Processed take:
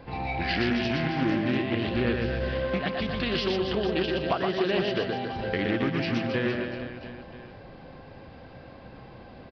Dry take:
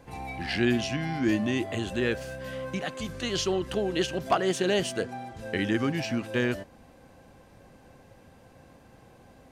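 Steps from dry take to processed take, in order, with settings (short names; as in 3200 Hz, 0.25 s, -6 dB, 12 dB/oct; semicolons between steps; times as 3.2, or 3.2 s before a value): 1.96–2.53 low shelf 120 Hz +11 dB; compressor 3:1, threshold -33 dBFS, peak gain reduction 11 dB; on a send: reverse bouncing-ball echo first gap 0.12 s, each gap 1.25×, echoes 5; on the sum: downsampling 11025 Hz; Doppler distortion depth 0.26 ms; gain +6 dB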